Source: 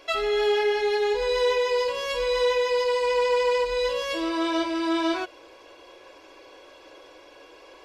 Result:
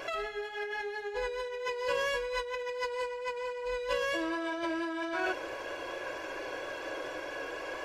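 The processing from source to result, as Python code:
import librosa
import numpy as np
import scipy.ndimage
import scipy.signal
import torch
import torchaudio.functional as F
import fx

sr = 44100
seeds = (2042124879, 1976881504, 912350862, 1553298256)

y = fx.graphic_eq_31(x, sr, hz=(125, 630, 1600, 5000), db=(11, 4, 9, -4))
y = fx.vibrato(y, sr, rate_hz=4.4, depth_cents=22.0)
y = fx.peak_eq(y, sr, hz=3700.0, db=-5.5, octaves=0.4)
y = fx.room_early_taps(y, sr, ms=(39, 71), db=(-14.5, -12.0))
y = fx.over_compress(y, sr, threshold_db=-33.0, ratio=-1.0)
y = fx.hum_notches(y, sr, base_hz=60, count=7)
y = y * librosa.db_to_amplitude(-1.5)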